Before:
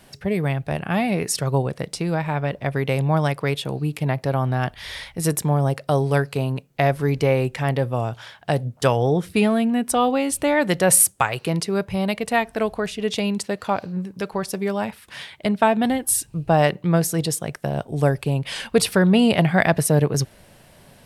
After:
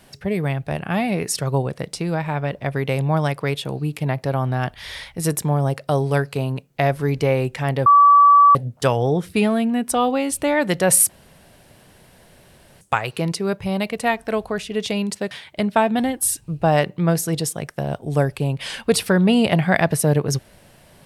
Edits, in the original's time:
7.86–8.55 s: bleep 1.15 kHz -7.5 dBFS
11.09 s: insert room tone 1.72 s
13.59–15.17 s: delete

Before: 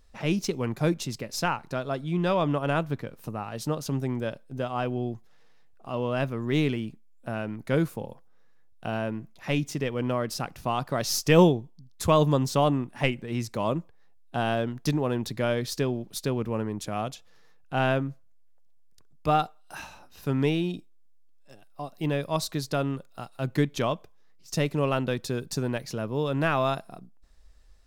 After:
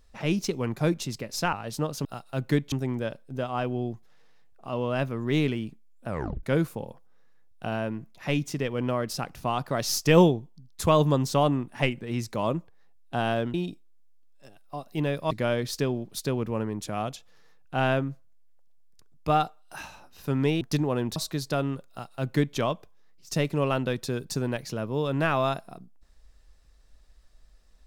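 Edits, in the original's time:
1.53–3.41 s: delete
7.29 s: tape stop 0.35 s
14.75–15.30 s: swap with 20.60–22.37 s
23.11–23.78 s: copy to 3.93 s

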